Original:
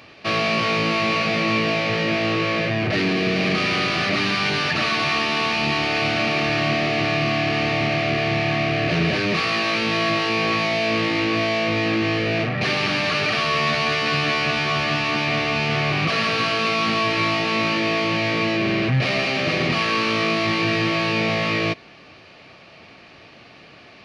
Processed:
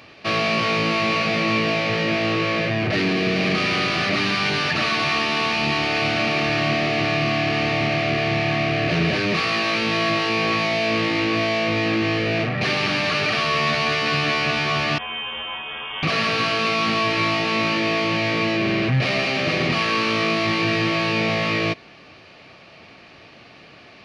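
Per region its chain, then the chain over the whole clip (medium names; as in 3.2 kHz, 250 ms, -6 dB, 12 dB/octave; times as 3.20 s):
14.98–16.03 s: feedback comb 99 Hz, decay 0.28 s, mix 100% + frequency inversion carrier 3.4 kHz
whole clip: none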